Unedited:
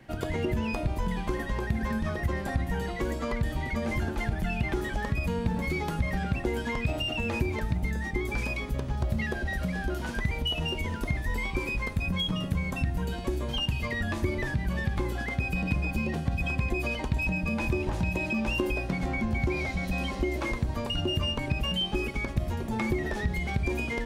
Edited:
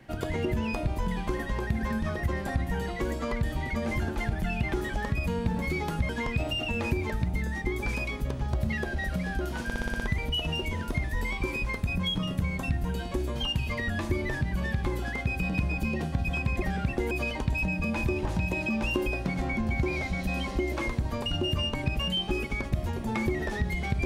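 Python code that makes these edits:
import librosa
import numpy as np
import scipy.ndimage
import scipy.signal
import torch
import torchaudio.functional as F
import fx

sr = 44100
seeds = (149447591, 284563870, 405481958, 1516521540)

y = fx.edit(x, sr, fx.move(start_s=6.09, length_s=0.49, to_s=16.75),
    fx.stutter(start_s=10.13, slice_s=0.06, count=7), tone=tone)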